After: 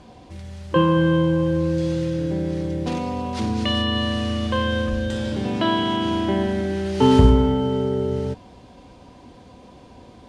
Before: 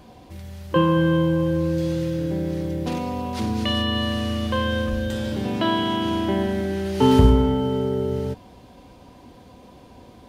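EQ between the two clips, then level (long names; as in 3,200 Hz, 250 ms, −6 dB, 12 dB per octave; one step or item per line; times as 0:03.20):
low-pass filter 9,300 Hz 24 dB per octave
+1.0 dB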